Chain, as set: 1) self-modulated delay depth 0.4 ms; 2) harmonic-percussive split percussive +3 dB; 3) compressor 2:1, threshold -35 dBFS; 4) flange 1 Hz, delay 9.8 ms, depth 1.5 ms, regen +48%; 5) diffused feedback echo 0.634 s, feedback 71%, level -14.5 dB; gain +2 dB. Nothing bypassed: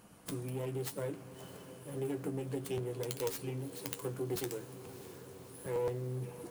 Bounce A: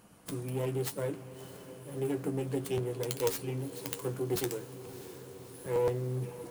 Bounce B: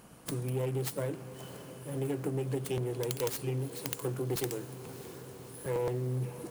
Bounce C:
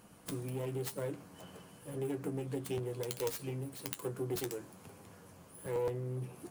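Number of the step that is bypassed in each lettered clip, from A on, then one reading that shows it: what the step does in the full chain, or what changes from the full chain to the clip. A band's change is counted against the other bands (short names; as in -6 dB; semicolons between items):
3, loudness change +4.5 LU; 4, 125 Hz band +2.5 dB; 5, echo-to-direct -11.5 dB to none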